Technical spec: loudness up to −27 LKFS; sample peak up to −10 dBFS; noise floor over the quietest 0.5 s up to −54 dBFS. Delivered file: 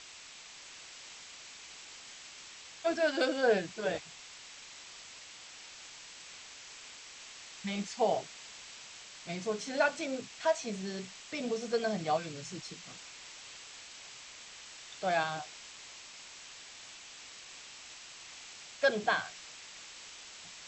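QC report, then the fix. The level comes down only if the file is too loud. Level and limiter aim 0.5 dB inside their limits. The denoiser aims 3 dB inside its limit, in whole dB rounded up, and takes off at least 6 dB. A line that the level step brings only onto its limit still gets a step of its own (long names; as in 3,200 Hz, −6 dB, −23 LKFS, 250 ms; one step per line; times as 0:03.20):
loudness −37.0 LKFS: in spec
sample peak −15.5 dBFS: in spec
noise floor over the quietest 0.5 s −51 dBFS: out of spec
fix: broadband denoise 6 dB, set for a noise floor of −51 dBFS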